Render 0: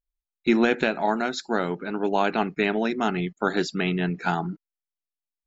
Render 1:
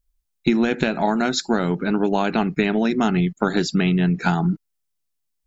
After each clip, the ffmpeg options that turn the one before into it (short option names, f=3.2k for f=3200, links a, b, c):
-af "bass=f=250:g=10,treble=f=4k:g=5,acompressor=threshold=-22dB:ratio=6,volume=6.5dB"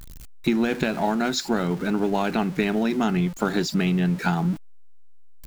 -af "aeval=exprs='val(0)+0.5*0.0316*sgn(val(0))':c=same,volume=-4dB"